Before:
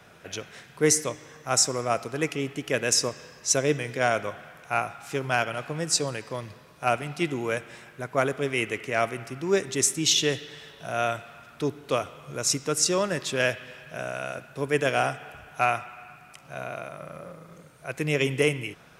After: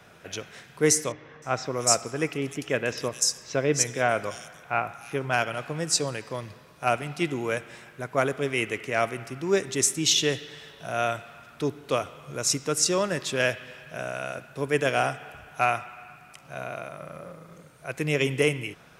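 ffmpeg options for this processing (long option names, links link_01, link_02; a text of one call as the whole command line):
ffmpeg -i in.wav -filter_complex "[0:a]asettb=1/sr,asplit=3[link_01][link_02][link_03];[link_01]atrim=end=1.124[link_04];[link_02]atrim=start=1.12:end=5.33,asetpts=PTS-STARTPTS,afade=type=in:duration=0.004:curve=qsin,afade=type=out:start_time=4.206:duration=0.004:curve=qsin,acrossover=split=3700[link_05][link_06];[link_06]adelay=300[link_07];[link_05][link_07]amix=inputs=2:normalize=0,atrim=end_sample=185661[link_08];[link_03]atrim=start=5.326[link_09];[link_04][link_08]acrossfade=duration=0.004:curve1=hsin:curve2=qsin[link_10];[link_10][link_09]acrossfade=duration=0.004:curve1=qsin:curve2=hsin" out.wav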